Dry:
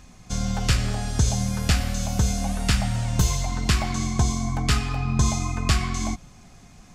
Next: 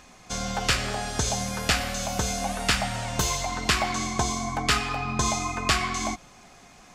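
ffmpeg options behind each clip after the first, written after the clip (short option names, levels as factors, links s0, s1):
-af "bass=f=250:g=-15,treble=f=4000:g=-4,volume=1.68"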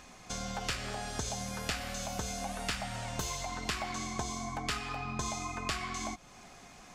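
-af "acompressor=threshold=0.0126:ratio=2,aeval=exprs='0.133*(cos(1*acos(clip(val(0)/0.133,-1,1)))-cos(1*PI/2))+0.0168*(cos(2*acos(clip(val(0)/0.133,-1,1)))-cos(2*PI/2))':c=same,volume=0.794"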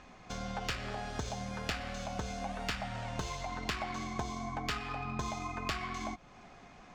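-af "adynamicsmooth=sensitivity=4:basefreq=3600"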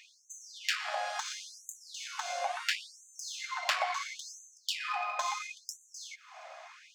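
-af "aeval=exprs='val(0)+0.001*sin(2*PI*640*n/s)':c=same,afftfilt=real='re*gte(b*sr/1024,490*pow(6100/490,0.5+0.5*sin(2*PI*0.73*pts/sr)))':imag='im*gte(b*sr/1024,490*pow(6100/490,0.5+0.5*sin(2*PI*0.73*pts/sr)))':win_size=1024:overlap=0.75,volume=2.24"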